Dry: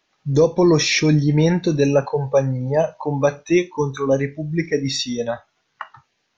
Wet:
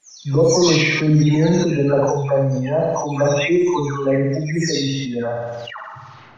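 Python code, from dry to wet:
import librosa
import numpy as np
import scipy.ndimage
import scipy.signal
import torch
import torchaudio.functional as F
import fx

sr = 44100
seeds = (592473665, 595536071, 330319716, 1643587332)

y = fx.spec_delay(x, sr, highs='early', ms=374)
y = fx.room_flutter(y, sr, wall_m=10.1, rt60_s=0.66)
y = fx.sustainer(y, sr, db_per_s=25.0)
y = F.gain(torch.from_numpy(y), -1.5).numpy()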